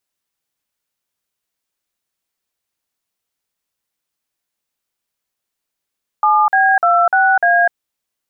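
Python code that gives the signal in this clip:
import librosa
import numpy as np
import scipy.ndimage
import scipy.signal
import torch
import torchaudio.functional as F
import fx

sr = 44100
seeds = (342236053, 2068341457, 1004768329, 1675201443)

y = fx.dtmf(sr, digits='7B26A', tone_ms=251, gap_ms=48, level_db=-12.0)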